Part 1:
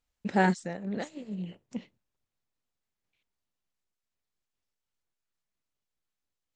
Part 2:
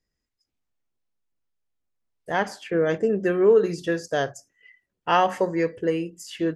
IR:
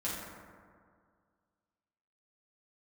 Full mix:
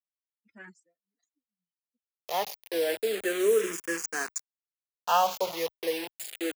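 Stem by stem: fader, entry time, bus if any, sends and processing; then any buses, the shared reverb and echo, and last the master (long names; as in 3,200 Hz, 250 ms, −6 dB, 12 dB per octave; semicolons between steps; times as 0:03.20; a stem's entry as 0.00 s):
−7.5 dB, 0.20 s, no send, spectral dynamics exaggerated over time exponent 3; through-zero flanger with one copy inverted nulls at 0.49 Hz, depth 3.7 ms; automatic ducking −23 dB, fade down 1.90 s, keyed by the second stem
−0.5 dB, 0.00 s, no send, Butterworth high-pass 170 Hz 72 dB per octave; parametric band 6,800 Hz +14.5 dB 0.24 octaves; bit reduction 5 bits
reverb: not used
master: high-pass filter 700 Hz 6 dB per octave; frequency shifter mixed with the dry sound −0.31 Hz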